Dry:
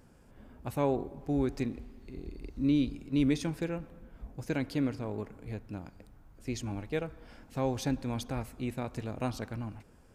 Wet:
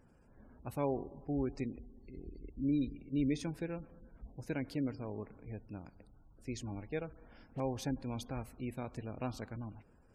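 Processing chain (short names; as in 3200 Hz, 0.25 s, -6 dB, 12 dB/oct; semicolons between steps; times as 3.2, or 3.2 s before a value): spectral gate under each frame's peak -30 dB strong; 7.13–7.6 dispersion highs, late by 87 ms, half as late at 2100 Hz; gain -5.5 dB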